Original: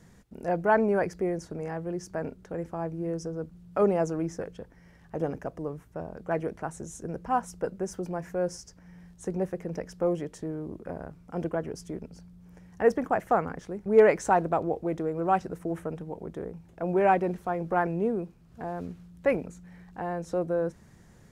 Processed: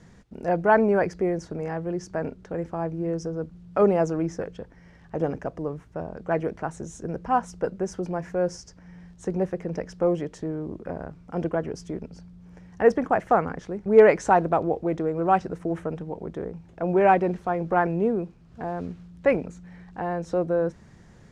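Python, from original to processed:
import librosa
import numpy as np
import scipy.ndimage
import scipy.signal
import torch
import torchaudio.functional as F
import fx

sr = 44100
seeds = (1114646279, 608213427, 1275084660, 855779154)

y = scipy.signal.sosfilt(scipy.signal.butter(2, 6300.0, 'lowpass', fs=sr, output='sos'), x)
y = y * librosa.db_to_amplitude(4.0)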